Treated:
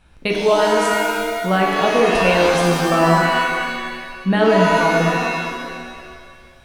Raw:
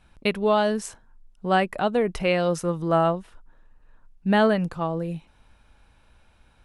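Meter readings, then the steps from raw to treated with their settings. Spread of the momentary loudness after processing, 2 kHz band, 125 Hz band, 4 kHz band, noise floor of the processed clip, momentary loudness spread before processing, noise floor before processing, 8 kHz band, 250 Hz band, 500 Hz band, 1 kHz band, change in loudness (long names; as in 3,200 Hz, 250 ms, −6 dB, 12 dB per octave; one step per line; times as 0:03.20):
12 LU, +12.5 dB, +7.0 dB, +11.0 dB, −45 dBFS, 12 LU, −59 dBFS, +11.5 dB, +6.0 dB, +7.5 dB, +9.0 dB, +7.0 dB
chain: boost into a limiter +12 dB
reverb with rising layers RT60 1.8 s, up +7 semitones, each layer −2 dB, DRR −0.5 dB
level −8.5 dB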